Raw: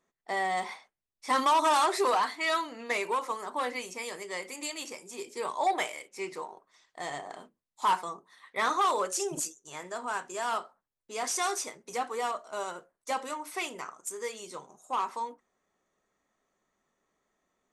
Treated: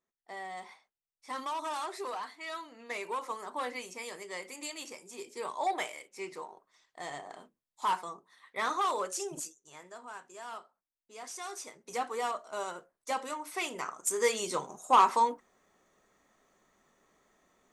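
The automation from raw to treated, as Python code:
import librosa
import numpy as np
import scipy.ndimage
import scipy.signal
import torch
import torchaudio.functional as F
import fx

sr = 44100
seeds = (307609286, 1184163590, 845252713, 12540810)

y = fx.gain(x, sr, db=fx.line((2.52, -12.0), (3.32, -4.0), (9.08, -4.0), (10.13, -12.0), (11.44, -12.0), (11.95, -1.5), (13.54, -1.5), (14.27, 9.0)))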